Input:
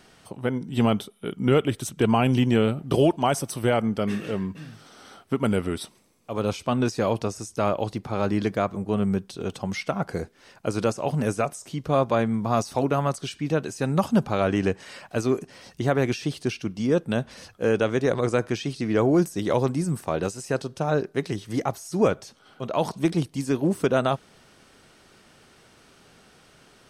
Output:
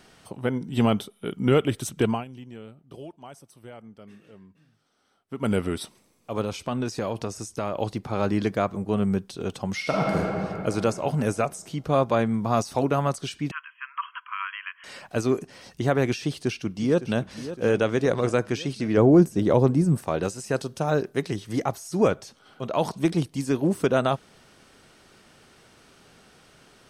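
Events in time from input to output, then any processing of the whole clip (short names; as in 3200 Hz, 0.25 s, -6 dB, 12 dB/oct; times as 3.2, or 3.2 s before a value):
2.01–5.52 dip -21.5 dB, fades 0.24 s
6.41–7.75 compressor 2.5:1, threshold -25 dBFS
9.77–10.17 reverb throw, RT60 2.9 s, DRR -3.5 dB
13.51–14.84 brick-wall FIR band-pass 960–3300 Hz
16.23–17.22 echo throw 0.56 s, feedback 60%, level -13 dB
18.97–19.98 tilt shelf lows +5.5 dB
20.54–21.22 high shelf 9400 Hz +10.5 dB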